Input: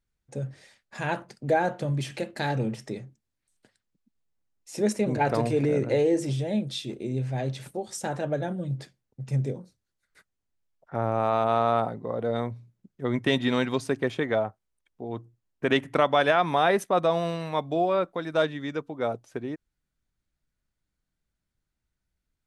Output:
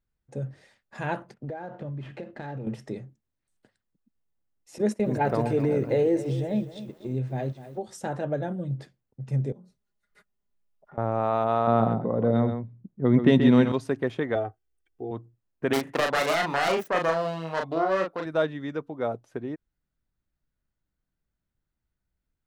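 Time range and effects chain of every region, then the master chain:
0:01.34–0:02.67: running median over 9 samples + downward compressor 12 to 1, threshold −31 dBFS + high-frequency loss of the air 97 metres
0:04.78–0:07.82: noise gate −32 dBFS, range −14 dB + feedback echo at a low word length 250 ms, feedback 35%, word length 8 bits, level −13 dB
0:09.52–0:10.98: notch filter 1,600 Hz, Q 16 + comb filter 4.9 ms, depth 75% + downward compressor 5 to 1, threshold −47 dBFS
0:11.67–0:13.72: low-pass that shuts in the quiet parts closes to 1,200 Hz, open at −19 dBFS + parametric band 180 Hz +9.5 dB 2.3 octaves + single-tap delay 130 ms −7.5 dB
0:14.35–0:15.11: parametric band 1,000 Hz −9.5 dB 0.63 octaves + notch filter 3,900 Hz, Q 10 + comb filter 2.6 ms, depth 79%
0:15.73–0:18.26: phase distortion by the signal itself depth 0.46 ms + low-shelf EQ 150 Hz −10.5 dB + double-tracking delay 37 ms −3.5 dB
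whole clip: parametric band 8,100 Hz −8.5 dB 2.9 octaves; notch filter 2,300 Hz, Q 26

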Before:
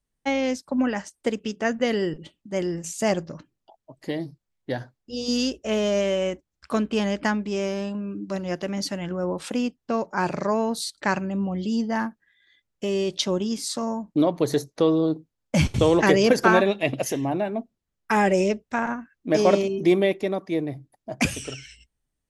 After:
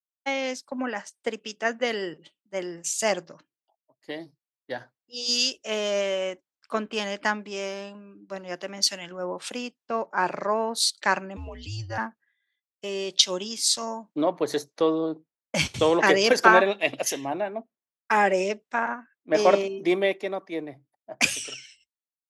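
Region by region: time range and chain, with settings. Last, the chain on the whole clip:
0:11.36–0:11.98: frequency shifter −120 Hz + multiband upward and downward compressor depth 70%
whole clip: meter weighting curve A; downward compressor 1.5 to 1, threshold −31 dBFS; multiband upward and downward expander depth 100%; level +3 dB

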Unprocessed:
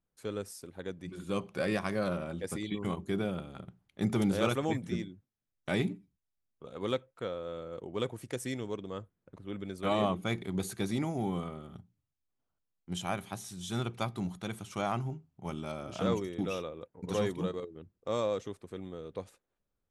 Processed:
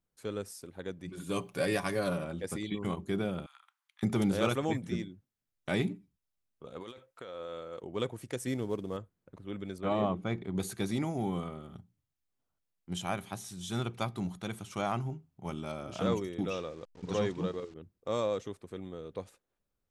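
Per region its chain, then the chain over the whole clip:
0:01.17–0:02.25: high-shelf EQ 7,800 Hz +11.5 dB + notch filter 1,300 Hz, Q 21 + comb filter 7 ms, depth 51%
0:03.46–0:04.03: Butterworth high-pass 950 Hz 48 dB per octave + downward compressor 3 to 1, threshold −54 dBFS
0:06.80–0:07.84: low-shelf EQ 360 Hz −11 dB + compressor whose output falls as the input rises −43 dBFS
0:08.47–0:08.97: variable-slope delta modulation 64 kbit/s + tilt shelving filter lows +4 dB, about 1,300 Hz
0:09.78–0:10.56: low-pass filter 7,800 Hz + high-shelf EQ 2,200 Hz −10.5 dB
0:16.50–0:17.74: hold until the input has moved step −52 dBFS + low-pass filter 7,200 Hz 24 dB per octave
whole clip: no processing

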